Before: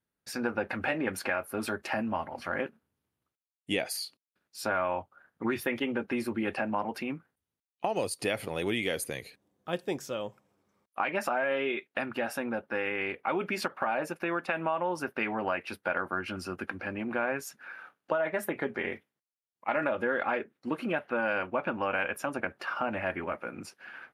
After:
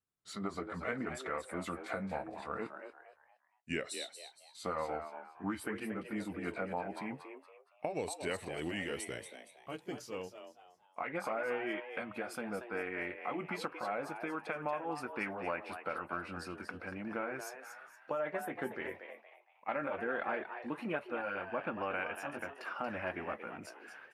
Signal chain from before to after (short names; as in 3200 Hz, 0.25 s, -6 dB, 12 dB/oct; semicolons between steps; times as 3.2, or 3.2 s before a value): gliding pitch shift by -3.5 st ending unshifted; wow and flutter 19 cents; frequency-shifting echo 0.233 s, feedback 34%, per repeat +130 Hz, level -9 dB; gain -6.5 dB